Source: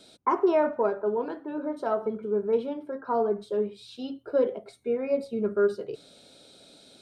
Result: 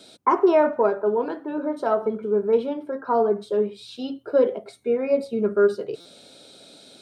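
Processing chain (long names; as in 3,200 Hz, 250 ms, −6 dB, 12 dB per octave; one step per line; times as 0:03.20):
high-pass filter 120 Hz 6 dB per octave
buffer that repeats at 0:06.00, samples 256
level +5.5 dB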